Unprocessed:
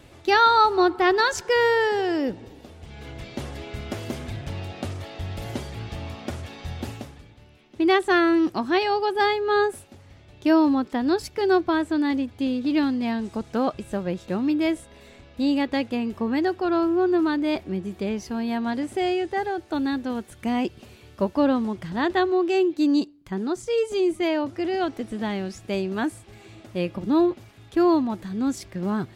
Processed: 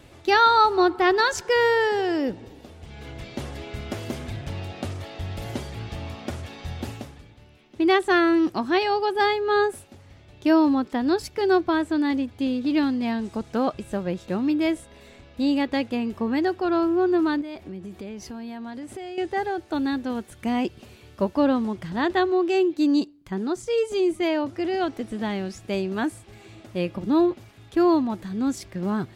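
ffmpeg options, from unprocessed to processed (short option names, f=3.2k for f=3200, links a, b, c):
-filter_complex "[0:a]asettb=1/sr,asplit=3[a][b][c];[a]atrim=end=17.414[d];[b]atrim=start=17.41:end=19.18,asetpts=PTS-STARTPTS,afade=t=in:d=0.004:c=qsin,afade=t=out:st=1.766:d=0.004:c=qsin,acompressor=threshold=-33dB:ratio=5:attack=3.2:release=140:knee=1:detection=peak[e];[c]atrim=start=19.176[f];[d][e]acrossfade=d=0.004:c1=hsin:c2=qsin[g];[g][f]acrossfade=d=0.004:c1=qsin:c2=hsin"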